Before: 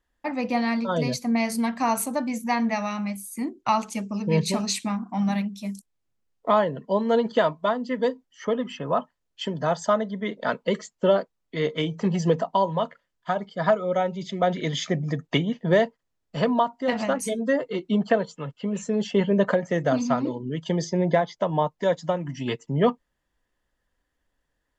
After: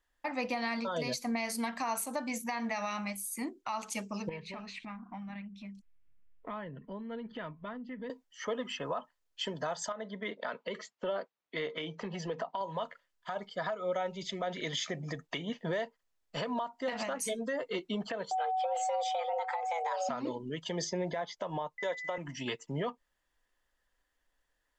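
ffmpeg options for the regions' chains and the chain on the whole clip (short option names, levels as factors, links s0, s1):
-filter_complex "[0:a]asettb=1/sr,asplit=3[s0][s1][s2];[s0]atrim=end=4.294[s3];[s1]atrim=start=4.29:end=8.1,asetpts=PTS-STARTPTS,afade=t=in:d=0.004:c=qsin,afade=t=out:st=3.806:d=0.004:c=qsin,asubboost=boost=11:cutoff=230,acompressor=threshold=0.0141:ratio=3:attack=3.2:release=140:knee=1:detection=peak,lowpass=f=2300:t=q:w=1.6[s4];[s2]atrim=start=8.096[s5];[s3][s4]acrossfade=d=0.004:c1=hsin:c2=qsin[s6];[s6][s5]acrossfade=d=0.004:c1=qsin:c2=hsin,asettb=1/sr,asplit=3[s7][s8][s9];[s7]atrim=end=9.924[s10];[s8]atrim=start=9.92:end=12.61,asetpts=PTS-STARTPTS,afade=t=in:d=0.004:c=qsin,afade=t=out:st=2.686:d=0.004:c=qsin,highpass=140,lowpass=3900,acompressor=threshold=0.0501:ratio=5:attack=3.2:release=140:knee=1:detection=peak[s11];[s9]atrim=start=12.606[s12];[s10][s11]acrossfade=d=0.004:c1=hsin:c2=qsin[s13];[s13][s12]acrossfade=d=0.004:c1=qsin:c2=hsin,asettb=1/sr,asplit=3[s14][s15][s16];[s14]atrim=end=18.314[s17];[s15]atrim=start=18.31:end=20.09,asetpts=PTS-STARTPTS,afade=t=in:d=0.004:c=qsin,afade=t=out:st=1.776:d=0.004:c=qsin,aeval=exprs='val(0)+0.0562*sin(2*PI*430*n/s)':c=same,afreqshift=320[s18];[s16]atrim=start=20.086[s19];[s17][s18]acrossfade=d=0.004:c1=hsin:c2=qsin[s20];[s20][s19]acrossfade=d=0.004:c1=qsin:c2=hsin,asettb=1/sr,asplit=3[s21][s22][s23];[s21]atrim=end=21.784[s24];[s22]atrim=start=21.78:end=22.18,asetpts=PTS-STARTPTS,afade=t=in:d=0.004:c=qsin,afade=t=out:st=0.396:d=0.004:c=qsin,agate=range=0.126:threshold=0.0112:ratio=16:release=100:detection=peak,highpass=290,aeval=exprs='val(0)+0.0141*sin(2*PI*2000*n/s)':c=same[s25];[s23]atrim=start=22.176[s26];[s24][s25]acrossfade=d=0.004:c1=hsin:c2=qsin[s27];[s27][s26]acrossfade=d=0.004:c1=qsin:c2=hsin,equalizer=f=130:w=0.35:g=-12,acompressor=threshold=0.0447:ratio=6,alimiter=level_in=1.12:limit=0.0631:level=0:latency=1:release=94,volume=0.891"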